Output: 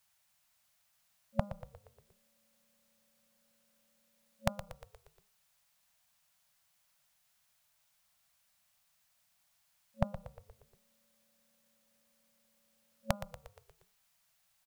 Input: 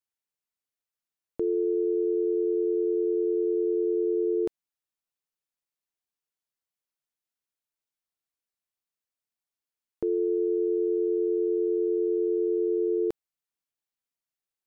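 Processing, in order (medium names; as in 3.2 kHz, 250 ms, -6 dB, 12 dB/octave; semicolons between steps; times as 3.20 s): de-hum 202.8 Hz, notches 7; FFT band-reject 220–550 Hz; frequency-shifting echo 118 ms, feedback 55%, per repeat -32 Hz, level -12.5 dB; trim +17 dB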